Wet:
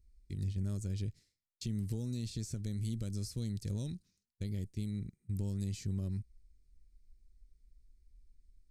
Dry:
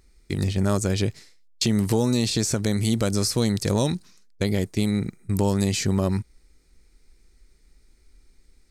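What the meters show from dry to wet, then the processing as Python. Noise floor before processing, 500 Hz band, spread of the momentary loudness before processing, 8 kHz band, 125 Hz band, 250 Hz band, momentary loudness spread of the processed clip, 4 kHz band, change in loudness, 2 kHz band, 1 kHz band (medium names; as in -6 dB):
-59 dBFS, -24.0 dB, 7 LU, -20.5 dB, -11.5 dB, -17.0 dB, 6 LU, -22.0 dB, -15.0 dB, -25.5 dB, under -30 dB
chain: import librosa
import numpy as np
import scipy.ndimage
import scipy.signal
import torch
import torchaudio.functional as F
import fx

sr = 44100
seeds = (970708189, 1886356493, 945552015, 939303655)

y = fx.tone_stack(x, sr, knobs='10-0-1')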